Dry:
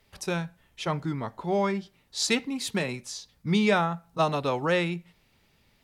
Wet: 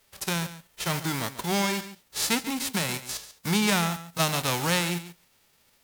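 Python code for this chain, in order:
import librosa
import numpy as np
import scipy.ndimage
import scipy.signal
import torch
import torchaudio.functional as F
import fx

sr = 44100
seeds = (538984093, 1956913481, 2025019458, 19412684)

p1 = fx.envelope_flatten(x, sr, power=0.3)
p2 = fx.level_steps(p1, sr, step_db=19)
p3 = p1 + F.gain(torch.from_numpy(p2), 2.5).numpy()
p4 = p3 + 10.0 ** (-14.0 / 20.0) * np.pad(p3, (int(140 * sr / 1000.0), 0))[:len(p3)]
y = F.gain(torch.from_numpy(p4), -2.5).numpy()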